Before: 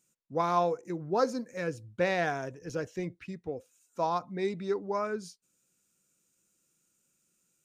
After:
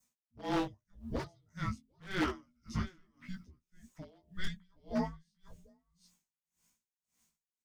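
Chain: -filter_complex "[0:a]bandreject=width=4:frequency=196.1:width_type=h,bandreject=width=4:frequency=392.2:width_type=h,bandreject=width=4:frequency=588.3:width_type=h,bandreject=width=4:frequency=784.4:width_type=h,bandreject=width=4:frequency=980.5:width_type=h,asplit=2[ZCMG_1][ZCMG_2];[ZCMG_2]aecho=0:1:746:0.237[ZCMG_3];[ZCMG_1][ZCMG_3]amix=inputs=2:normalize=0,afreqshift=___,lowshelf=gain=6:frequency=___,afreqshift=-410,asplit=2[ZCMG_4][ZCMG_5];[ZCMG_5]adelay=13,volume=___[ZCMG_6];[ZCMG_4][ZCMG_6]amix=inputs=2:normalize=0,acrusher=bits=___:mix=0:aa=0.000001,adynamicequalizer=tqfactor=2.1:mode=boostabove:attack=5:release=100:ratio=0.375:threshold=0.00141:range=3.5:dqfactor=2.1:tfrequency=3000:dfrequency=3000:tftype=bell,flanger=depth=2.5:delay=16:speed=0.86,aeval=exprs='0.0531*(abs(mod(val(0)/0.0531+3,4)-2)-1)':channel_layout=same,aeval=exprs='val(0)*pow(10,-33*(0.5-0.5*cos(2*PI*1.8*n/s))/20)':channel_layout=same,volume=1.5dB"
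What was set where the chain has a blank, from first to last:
36, 74, -6dB, 11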